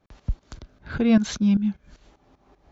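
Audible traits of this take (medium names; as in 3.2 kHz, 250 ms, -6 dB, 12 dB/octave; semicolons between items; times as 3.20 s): tremolo saw up 5.1 Hz, depth 80%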